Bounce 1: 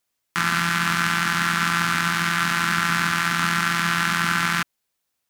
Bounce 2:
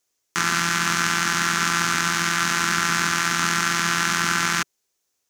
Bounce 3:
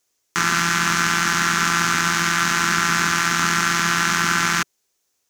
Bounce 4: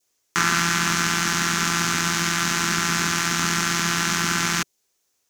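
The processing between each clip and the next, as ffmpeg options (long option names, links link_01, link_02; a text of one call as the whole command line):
ffmpeg -i in.wav -af "equalizer=frequency=160:width_type=o:width=0.67:gain=-3,equalizer=frequency=400:width_type=o:width=0.67:gain=8,equalizer=frequency=6300:width_type=o:width=0.67:gain=10,volume=-1dB" out.wav
ffmpeg -i in.wav -af "acontrast=57,volume=-2.5dB" out.wav
ffmpeg -i in.wav -af "adynamicequalizer=threshold=0.0224:dfrequency=1400:dqfactor=1:tfrequency=1400:tqfactor=1:attack=5:release=100:ratio=0.375:range=3:mode=cutabove:tftype=bell" out.wav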